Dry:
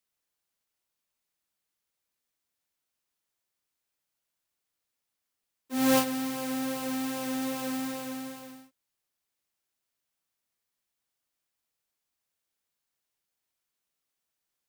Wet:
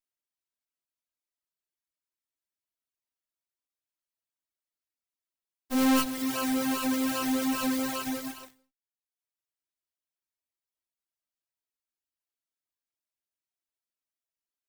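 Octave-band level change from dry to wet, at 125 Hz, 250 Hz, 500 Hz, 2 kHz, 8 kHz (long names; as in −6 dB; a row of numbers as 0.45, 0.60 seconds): −2.5, +3.0, −2.0, +2.5, +1.5 decibels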